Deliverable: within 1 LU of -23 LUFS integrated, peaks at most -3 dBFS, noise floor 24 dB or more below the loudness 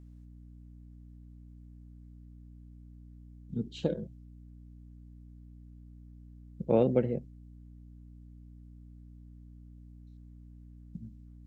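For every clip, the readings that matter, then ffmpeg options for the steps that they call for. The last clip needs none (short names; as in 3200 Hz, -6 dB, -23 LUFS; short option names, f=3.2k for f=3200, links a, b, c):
hum 60 Hz; harmonics up to 300 Hz; hum level -49 dBFS; loudness -32.0 LUFS; peak -13.0 dBFS; loudness target -23.0 LUFS
-> -af "bandreject=f=60:t=h:w=6,bandreject=f=120:t=h:w=6,bandreject=f=180:t=h:w=6,bandreject=f=240:t=h:w=6,bandreject=f=300:t=h:w=6"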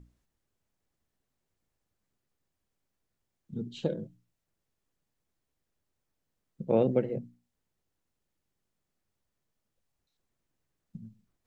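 hum none; loudness -31.0 LUFS; peak -13.0 dBFS; loudness target -23.0 LUFS
-> -af "volume=8dB"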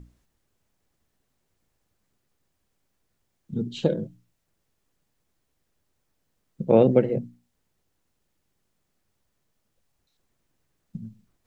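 loudness -23.5 LUFS; peak -5.0 dBFS; noise floor -76 dBFS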